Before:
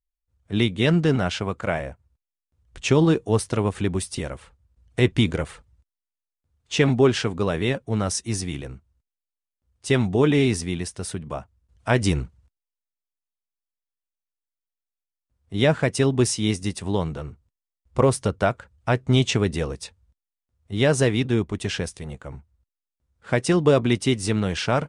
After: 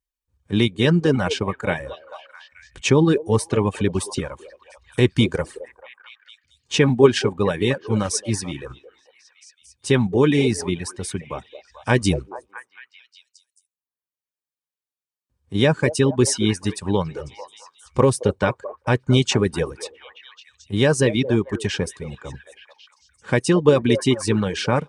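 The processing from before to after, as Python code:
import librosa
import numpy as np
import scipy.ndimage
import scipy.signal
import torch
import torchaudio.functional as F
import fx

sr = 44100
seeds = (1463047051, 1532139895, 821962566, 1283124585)

p1 = fx.notch_comb(x, sr, f0_hz=680.0)
p2 = fx.echo_stepped(p1, sr, ms=219, hz=500.0, octaves=0.7, feedback_pct=70, wet_db=-7.5)
p3 = fx.dereverb_blind(p2, sr, rt60_s=0.81)
p4 = fx.level_steps(p3, sr, step_db=14)
p5 = p3 + (p4 * librosa.db_to_amplitude(-3.0))
y = p5 * librosa.db_to_amplitude(1.5)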